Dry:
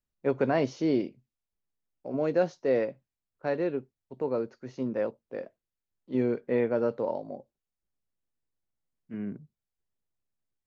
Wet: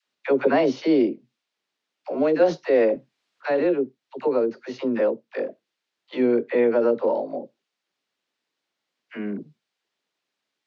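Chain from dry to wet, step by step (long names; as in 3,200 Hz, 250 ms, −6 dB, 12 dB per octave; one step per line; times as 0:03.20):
Chebyshev band-pass filter 290–4,000 Hz, order 2
in parallel at −3 dB: brickwall limiter −24 dBFS, peak gain reduction 9.5 dB
0:02.41–0:03.65: on the sum: transient designer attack −1 dB, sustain +6 dB
all-pass dispersion lows, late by 69 ms, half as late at 530 Hz
one half of a high-frequency compander encoder only
level +5 dB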